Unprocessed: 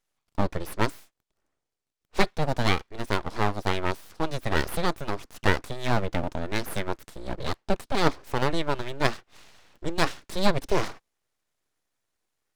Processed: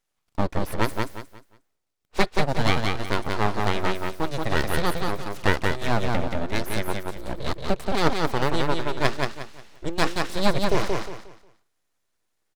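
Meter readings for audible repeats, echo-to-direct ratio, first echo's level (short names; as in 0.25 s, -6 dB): 3, -3.0 dB, -3.5 dB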